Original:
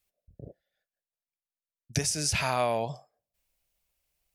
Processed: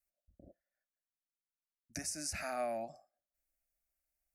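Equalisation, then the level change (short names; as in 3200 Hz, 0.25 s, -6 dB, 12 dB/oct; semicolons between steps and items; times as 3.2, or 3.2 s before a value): fixed phaser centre 660 Hz, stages 8; -8.0 dB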